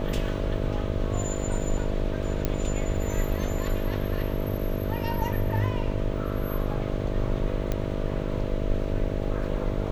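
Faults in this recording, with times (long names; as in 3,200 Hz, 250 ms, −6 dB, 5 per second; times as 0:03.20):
mains buzz 50 Hz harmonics 13 −31 dBFS
0:02.45: click −11 dBFS
0:07.72: click −14 dBFS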